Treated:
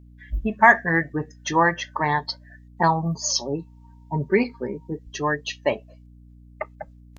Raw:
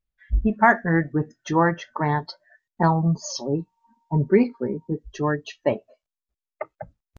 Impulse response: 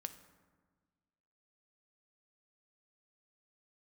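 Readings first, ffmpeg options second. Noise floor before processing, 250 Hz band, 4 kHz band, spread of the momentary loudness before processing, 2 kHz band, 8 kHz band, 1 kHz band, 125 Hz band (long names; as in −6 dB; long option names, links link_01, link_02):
below −85 dBFS, −4.0 dB, +8.0 dB, 14 LU, +5.0 dB, can't be measured, +2.0 dB, −5.0 dB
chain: -af "tiltshelf=frequency=760:gain=-7,bandreject=frequency=1400:width=5.3,aeval=exprs='val(0)+0.00398*(sin(2*PI*60*n/s)+sin(2*PI*2*60*n/s)/2+sin(2*PI*3*60*n/s)/3+sin(2*PI*4*60*n/s)/4+sin(2*PI*5*60*n/s)/5)':channel_layout=same,volume=1.5dB"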